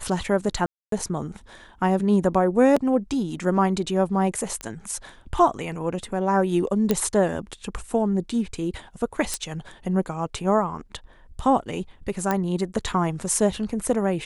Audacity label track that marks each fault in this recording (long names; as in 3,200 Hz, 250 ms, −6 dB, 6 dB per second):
0.660000	0.920000	drop-out 263 ms
2.760000	2.770000	drop-out 5.2 ms
4.610000	4.610000	click −17 dBFS
6.910000	6.910000	click −7 dBFS
9.340000	9.340000	click −10 dBFS
12.310000	12.310000	click −10 dBFS